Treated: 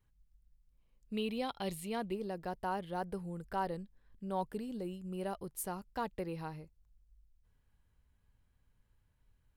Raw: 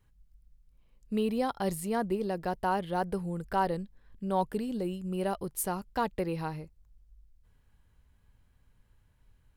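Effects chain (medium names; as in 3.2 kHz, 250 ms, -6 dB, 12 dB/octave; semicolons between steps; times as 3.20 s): 1.13–2.14 s: high-order bell 3 kHz +9 dB 1.1 oct; trim -7.5 dB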